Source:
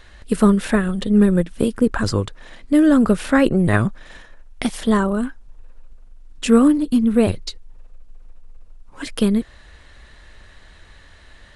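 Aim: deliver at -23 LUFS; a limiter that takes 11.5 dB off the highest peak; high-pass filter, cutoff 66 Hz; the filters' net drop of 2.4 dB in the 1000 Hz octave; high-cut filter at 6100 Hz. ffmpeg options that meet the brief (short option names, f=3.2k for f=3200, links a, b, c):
-af "highpass=66,lowpass=6.1k,equalizer=f=1k:t=o:g=-3,volume=1.5dB,alimiter=limit=-13dB:level=0:latency=1"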